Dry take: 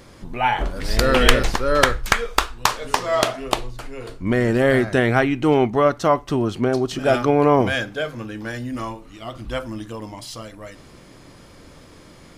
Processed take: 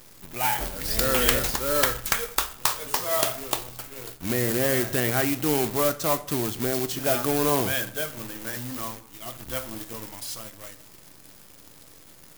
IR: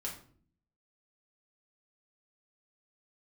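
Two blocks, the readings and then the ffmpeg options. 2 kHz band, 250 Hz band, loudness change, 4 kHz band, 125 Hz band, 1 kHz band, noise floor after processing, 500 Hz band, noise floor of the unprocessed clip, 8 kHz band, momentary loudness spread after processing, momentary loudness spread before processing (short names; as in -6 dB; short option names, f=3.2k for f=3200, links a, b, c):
-7.0 dB, -8.0 dB, -4.5 dB, -4.0 dB, -7.5 dB, -8.5 dB, -50 dBFS, -8.0 dB, -46 dBFS, +3.5 dB, 14 LU, 17 LU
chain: -filter_complex "[0:a]highpass=41,acrusher=bits=2:mode=log:mix=0:aa=0.000001,acontrast=69,aemphasis=mode=production:type=50fm,acrusher=bits=5:dc=4:mix=0:aa=0.000001,asplit=2[a][b];[1:a]atrim=start_sample=2205,asetrate=28665,aresample=44100[c];[b][c]afir=irnorm=-1:irlink=0,volume=-12.5dB[d];[a][d]amix=inputs=2:normalize=0,volume=-15dB"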